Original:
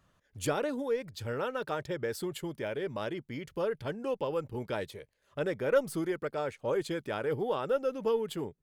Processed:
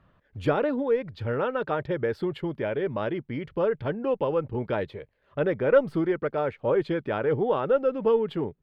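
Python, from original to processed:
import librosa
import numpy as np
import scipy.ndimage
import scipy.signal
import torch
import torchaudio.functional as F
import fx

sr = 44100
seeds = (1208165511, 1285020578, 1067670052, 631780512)

y = fx.air_absorb(x, sr, metres=380.0)
y = y * librosa.db_to_amplitude(8.0)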